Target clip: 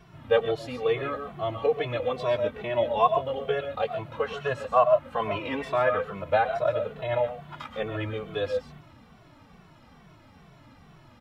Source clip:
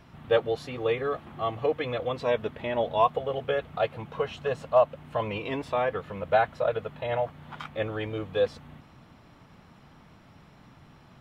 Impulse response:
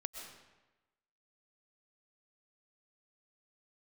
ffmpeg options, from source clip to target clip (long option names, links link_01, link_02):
-filter_complex "[0:a]asettb=1/sr,asplit=3[link_01][link_02][link_03];[link_01]atrim=end=3.844[link_04];[link_02]atrim=start=3.84:end=6.07,asetpts=PTS-STARTPTS,afade=type=in:duration=0.004:curve=qsin,afade=type=out:start_time=2.226:duration=0.004:curve=qsin,adynamicequalizer=threshold=0.00891:dfrequency=1400:dqfactor=1.4:tfrequency=1400:tqfactor=1.4:attack=5:release=100:ratio=0.375:range=3.5:mode=boostabove:tftype=bell[link_05];[link_03]atrim=start=6.066[link_06];[link_04][link_05]acrossfade=duration=0.004:curve1=hsin:curve2=qsin[link_07];[link_07][link_06]acrossfade=duration=0.004:curve1=qsin:curve2=hsin[link_08];[1:a]atrim=start_sample=2205,atrim=end_sample=6615[link_09];[link_08][link_09]afir=irnorm=-1:irlink=0,asplit=2[link_10][link_11];[link_11]adelay=2.2,afreqshift=-2.3[link_12];[link_10][link_12]amix=inputs=2:normalize=1,volume=6dB"